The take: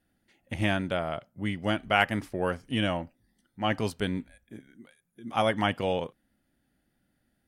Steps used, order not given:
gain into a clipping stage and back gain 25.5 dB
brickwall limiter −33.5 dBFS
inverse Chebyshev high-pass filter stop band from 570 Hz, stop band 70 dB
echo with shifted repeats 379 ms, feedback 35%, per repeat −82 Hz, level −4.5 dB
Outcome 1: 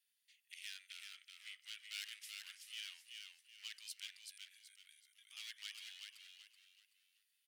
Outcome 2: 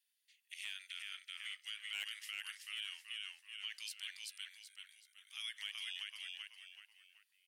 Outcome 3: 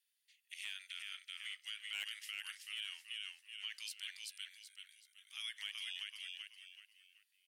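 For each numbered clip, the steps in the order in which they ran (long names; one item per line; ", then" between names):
gain into a clipping stage and back, then brickwall limiter, then echo with shifted repeats, then inverse Chebyshev high-pass filter
inverse Chebyshev high-pass filter, then echo with shifted repeats, then gain into a clipping stage and back, then brickwall limiter
echo with shifted repeats, then inverse Chebyshev high-pass filter, then gain into a clipping stage and back, then brickwall limiter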